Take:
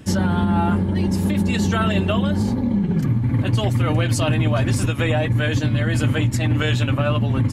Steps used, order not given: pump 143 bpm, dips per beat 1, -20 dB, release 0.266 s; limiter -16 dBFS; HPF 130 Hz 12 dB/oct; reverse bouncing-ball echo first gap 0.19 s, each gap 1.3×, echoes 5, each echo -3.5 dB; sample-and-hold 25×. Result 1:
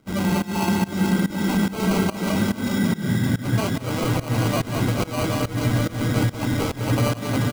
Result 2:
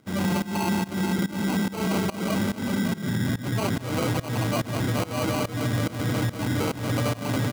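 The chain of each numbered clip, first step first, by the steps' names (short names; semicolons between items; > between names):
HPF > sample-and-hold > limiter > reverse bouncing-ball echo > pump; reverse bouncing-ball echo > sample-and-hold > HPF > limiter > pump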